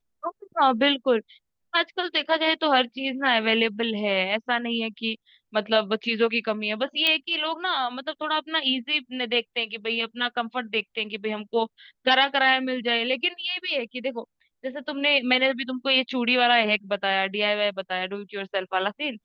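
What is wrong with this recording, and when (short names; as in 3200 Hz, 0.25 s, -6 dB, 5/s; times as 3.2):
7.07 pop -9 dBFS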